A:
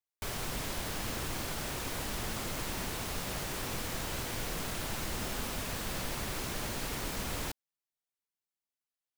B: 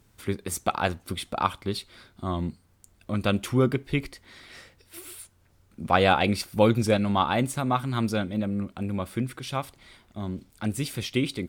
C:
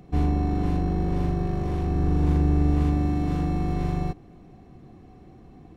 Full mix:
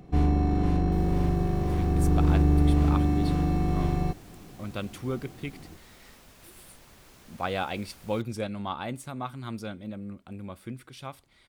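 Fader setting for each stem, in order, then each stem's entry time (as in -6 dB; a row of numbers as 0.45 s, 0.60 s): -17.0 dB, -10.0 dB, 0.0 dB; 0.70 s, 1.50 s, 0.00 s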